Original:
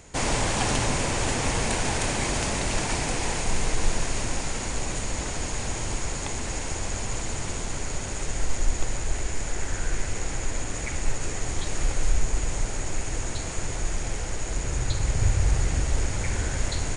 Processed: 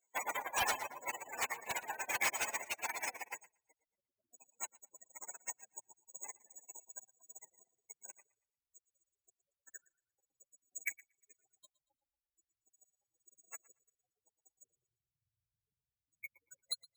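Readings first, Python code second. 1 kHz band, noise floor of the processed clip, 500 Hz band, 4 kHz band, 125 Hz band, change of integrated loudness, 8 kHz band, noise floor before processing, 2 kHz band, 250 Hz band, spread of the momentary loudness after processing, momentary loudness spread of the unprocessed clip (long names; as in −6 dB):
−11.5 dB, below −85 dBFS, −19.5 dB, −15.5 dB, below −40 dB, −12.0 dB, −16.0 dB, −32 dBFS, −10.0 dB, −30.0 dB, 21 LU, 7 LU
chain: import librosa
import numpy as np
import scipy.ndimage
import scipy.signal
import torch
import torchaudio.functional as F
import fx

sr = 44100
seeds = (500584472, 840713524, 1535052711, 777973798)

p1 = fx.spec_gate(x, sr, threshold_db=-15, keep='strong')
p2 = scipy.signal.sosfilt(scipy.signal.butter(2, 1400.0, 'highpass', fs=sr, output='sos'), p1)
p3 = 10.0 ** (-32.0 / 20.0) * (np.abs((p2 / 10.0 ** (-32.0 / 20.0) + 3.0) % 4.0 - 2.0) - 1.0)
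p4 = p3 + fx.echo_feedback(p3, sr, ms=116, feedback_pct=35, wet_db=-9.0, dry=0)
p5 = np.repeat(scipy.signal.resample_poly(p4, 1, 3), 3)[:len(p4)]
p6 = fx.upward_expand(p5, sr, threshold_db=-57.0, expansion=2.5)
y = F.gain(torch.from_numpy(p6), 7.5).numpy()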